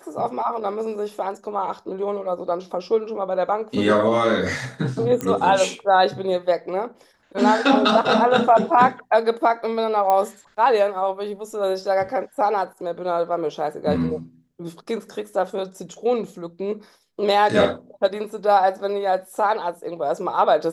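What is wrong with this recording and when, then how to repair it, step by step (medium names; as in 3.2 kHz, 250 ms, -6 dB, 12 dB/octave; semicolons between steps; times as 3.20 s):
5.21 s: pop -11 dBFS
10.10 s: pop -9 dBFS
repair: de-click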